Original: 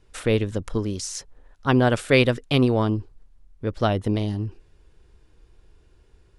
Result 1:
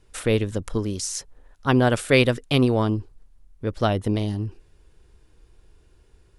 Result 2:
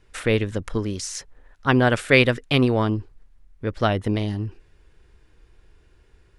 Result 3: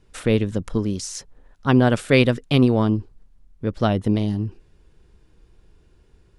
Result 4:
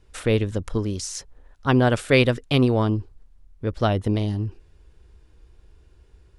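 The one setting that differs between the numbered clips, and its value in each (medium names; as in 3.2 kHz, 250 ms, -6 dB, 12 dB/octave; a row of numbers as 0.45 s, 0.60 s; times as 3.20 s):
peaking EQ, frequency: 11 kHz, 1.9 kHz, 190 Hz, 61 Hz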